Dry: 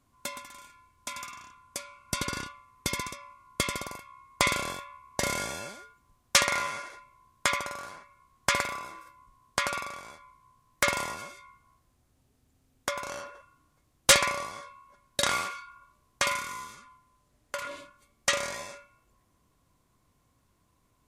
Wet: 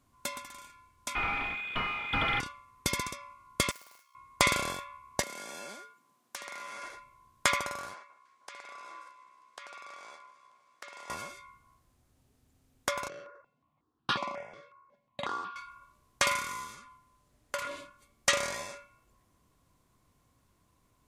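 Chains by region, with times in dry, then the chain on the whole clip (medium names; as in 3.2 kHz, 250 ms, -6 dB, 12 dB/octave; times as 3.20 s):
1.15–2.40 s: frequency inversion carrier 3.5 kHz + power-law waveshaper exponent 0.35 + distance through air 450 m
3.71–4.15 s: median filter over 15 samples + differentiator
5.22–6.82 s: high-pass 190 Hz 24 dB/octave + compression 16:1, threshold -38 dBFS
7.94–11.10 s: compression 16:1, threshold -42 dBFS + band-pass 440–7200 Hz + echo whose repeats swap between lows and highs 156 ms, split 1.5 kHz, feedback 67%, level -13.5 dB
13.08–15.56 s: high-pass 160 Hz + tape spacing loss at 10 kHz 30 dB + stepped phaser 5.5 Hz 240–2100 Hz
whole clip: none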